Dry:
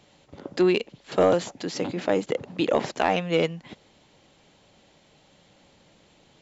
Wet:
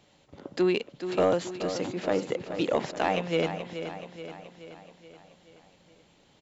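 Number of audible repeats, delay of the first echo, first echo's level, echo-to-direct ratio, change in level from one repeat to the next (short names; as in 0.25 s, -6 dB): 5, 0.427 s, -9.5 dB, -8.0 dB, -5.0 dB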